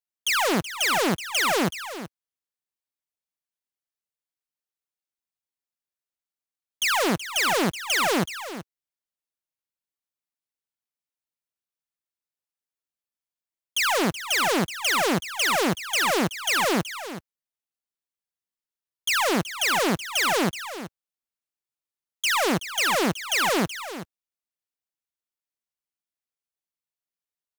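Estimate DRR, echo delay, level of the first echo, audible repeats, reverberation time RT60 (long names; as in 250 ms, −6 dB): no reverb audible, 376 ms, −12.5 dB, 1, no reverb audible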